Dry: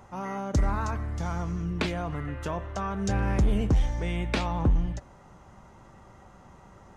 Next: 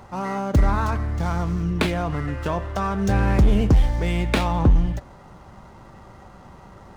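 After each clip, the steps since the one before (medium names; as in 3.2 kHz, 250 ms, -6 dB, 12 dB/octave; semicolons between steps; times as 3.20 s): median filter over 9 samples; peaking EQ 4.4 kHz +4.5 dB 0.94 oct; trim +7 dB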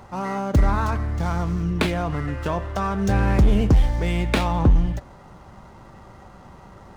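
no audible change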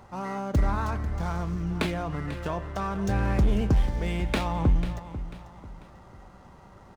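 feedback delay 493 ms, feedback 36%, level -13.5 dB; trim -6 dB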